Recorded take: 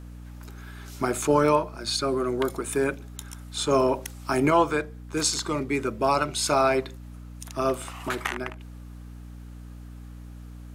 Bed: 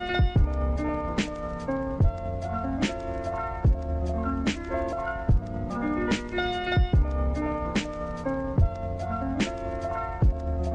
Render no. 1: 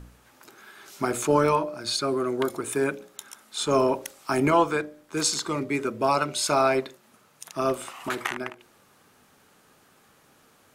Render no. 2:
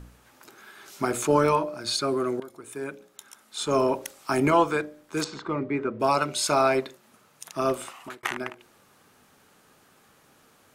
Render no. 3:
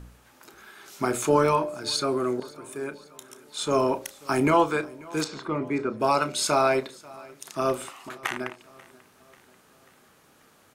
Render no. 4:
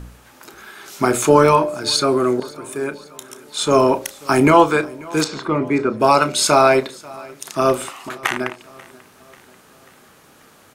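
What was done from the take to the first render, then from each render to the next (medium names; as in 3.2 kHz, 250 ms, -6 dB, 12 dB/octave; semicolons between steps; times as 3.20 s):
de-hum 60 Hz, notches 10
2.40–4.05 s: fade in, from -18 dB; 5.24–6.00 s: low-pass 1.9 kHz; 7.82–8.23 s: fade out
doubling 32 ms -13.5 dB; feedback delay 539 ms, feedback 56%, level -23 dB
trim +9 dB; peak limiter -1 dBFS, peak gain reduction 1 dB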